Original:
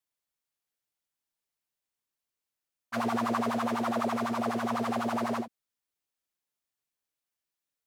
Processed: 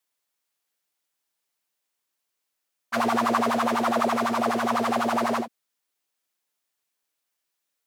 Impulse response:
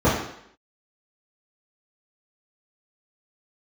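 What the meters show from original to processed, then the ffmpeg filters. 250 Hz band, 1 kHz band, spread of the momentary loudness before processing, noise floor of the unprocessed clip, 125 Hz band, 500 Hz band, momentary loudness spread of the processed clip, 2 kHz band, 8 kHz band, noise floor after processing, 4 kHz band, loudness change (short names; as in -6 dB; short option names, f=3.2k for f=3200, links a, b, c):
+3.5 dB, +7.5 dB, 5 LU, under -85 dBFS, 0.0 dB, +7.0 dB, 5 LU, +8.0 dB, +8.0 dB, -81 dBFS, +8.0 dB, +6.5 dB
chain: -af "highpass=f=310:p=1,volume=8dB"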